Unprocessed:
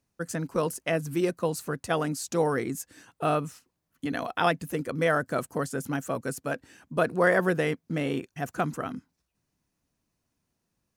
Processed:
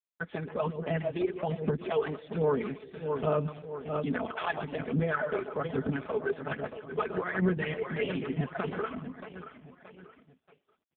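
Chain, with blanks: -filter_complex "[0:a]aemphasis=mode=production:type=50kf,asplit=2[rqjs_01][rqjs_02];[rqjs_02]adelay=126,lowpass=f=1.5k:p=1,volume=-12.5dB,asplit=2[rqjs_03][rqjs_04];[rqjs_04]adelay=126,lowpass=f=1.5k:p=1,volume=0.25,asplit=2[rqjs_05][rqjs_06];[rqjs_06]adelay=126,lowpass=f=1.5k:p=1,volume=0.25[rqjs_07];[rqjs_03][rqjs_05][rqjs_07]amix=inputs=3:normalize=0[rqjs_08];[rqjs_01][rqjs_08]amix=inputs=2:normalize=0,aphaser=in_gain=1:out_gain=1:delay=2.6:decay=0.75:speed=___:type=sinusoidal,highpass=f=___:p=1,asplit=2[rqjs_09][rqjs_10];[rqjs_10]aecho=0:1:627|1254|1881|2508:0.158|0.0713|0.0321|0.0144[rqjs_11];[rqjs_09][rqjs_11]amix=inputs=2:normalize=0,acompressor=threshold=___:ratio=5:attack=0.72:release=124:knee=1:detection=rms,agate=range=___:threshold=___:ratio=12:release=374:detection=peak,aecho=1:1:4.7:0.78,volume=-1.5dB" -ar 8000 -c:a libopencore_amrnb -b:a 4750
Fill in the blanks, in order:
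1.2, 59, -22dB, -53dB, -54dB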